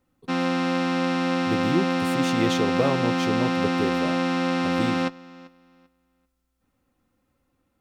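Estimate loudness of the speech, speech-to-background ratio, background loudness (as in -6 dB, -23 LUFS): -29.0 LUFS, -5.0 dB, -24.0 LUFS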